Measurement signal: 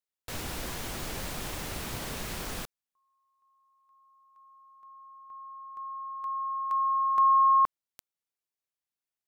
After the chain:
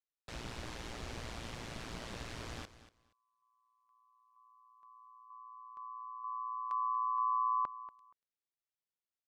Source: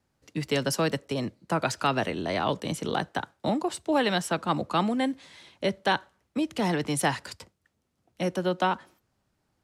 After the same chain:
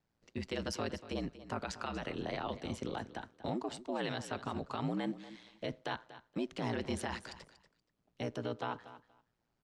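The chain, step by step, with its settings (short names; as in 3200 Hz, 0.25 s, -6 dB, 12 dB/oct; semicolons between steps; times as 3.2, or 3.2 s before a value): LPF 5900 Hz 12 dB/oct; limiter -21.5 dBFS; ring modulator 58 Hz; on a send: feedback echo 0.237 s, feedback 17%, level -15 dB; on the sum: gain -4.5 dB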